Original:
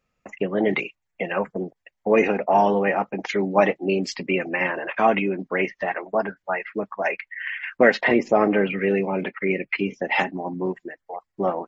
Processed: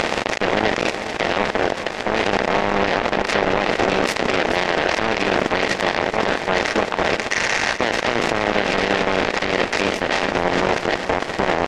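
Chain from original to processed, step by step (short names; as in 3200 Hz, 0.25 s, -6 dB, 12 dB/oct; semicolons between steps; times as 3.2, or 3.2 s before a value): per-bin compression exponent 0.2; 2.57–3.69 LPF 6000 Hz; in parallel at 0 dB: negative-ratio compressor -18 dBFS, ratio -1; on the sum: limiter -3 dBFS, peak gain reduction 9.5 dB; power-law curve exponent 3; on a send: feedback echo 0.429 s, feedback 53%, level -12 dB; on the sum: gain -1 dB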